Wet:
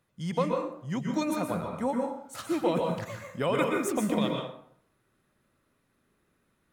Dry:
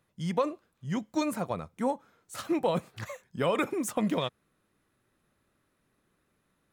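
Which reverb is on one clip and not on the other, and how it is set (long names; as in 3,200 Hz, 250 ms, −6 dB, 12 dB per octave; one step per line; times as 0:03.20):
dense smooth reverb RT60 0.67 s, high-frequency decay 0.65×, pre-delay 110 ms, DRR 1 dB
level −1 dB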